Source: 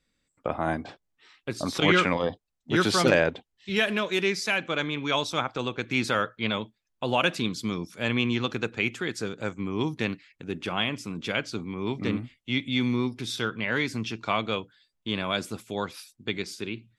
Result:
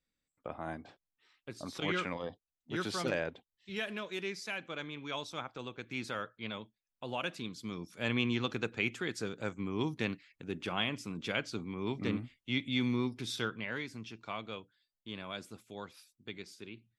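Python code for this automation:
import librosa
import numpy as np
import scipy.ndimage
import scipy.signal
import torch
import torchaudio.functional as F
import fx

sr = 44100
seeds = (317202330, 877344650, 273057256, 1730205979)

y = fx.gain(x, sr, db=fx.line((7.55, -13.0), (8.08, -6.0), (13.43, -6.0), (13.87, -14.0)))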